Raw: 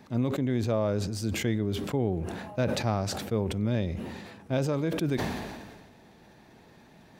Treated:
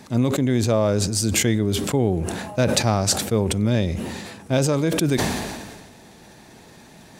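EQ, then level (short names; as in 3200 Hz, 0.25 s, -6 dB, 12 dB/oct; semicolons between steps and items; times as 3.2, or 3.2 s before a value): bell 8600 Hz +12 dB 1.5 oct; +7.5 dB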